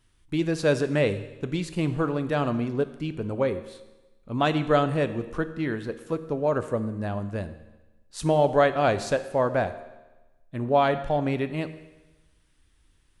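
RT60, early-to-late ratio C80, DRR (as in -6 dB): 1.1 s, 14.5 dB, 10.5 dB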